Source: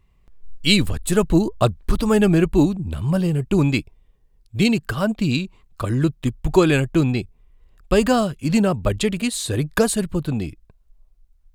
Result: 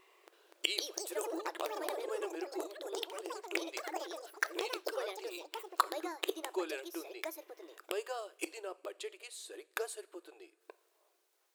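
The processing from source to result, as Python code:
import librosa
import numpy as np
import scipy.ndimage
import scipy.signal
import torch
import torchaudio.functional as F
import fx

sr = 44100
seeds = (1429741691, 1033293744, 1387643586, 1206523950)

y = fx.gate_flip(x, sr, shuts_db=-20.0, range_db=-29)
y = fx.rev_double_slope(y, sr, seeds[0], early_s=0.41, late_s=3.5, knee_db=-21, drr_db=16.0)
y = fx.echo_pitch(y, sr, ms=327, semitones=6, count=3, db_per_echo=-3.0)
y = fx.brickwall_highpass(y, sr, low_hz=320.0)
y = y * librosa.db_to_amplitude(8.0)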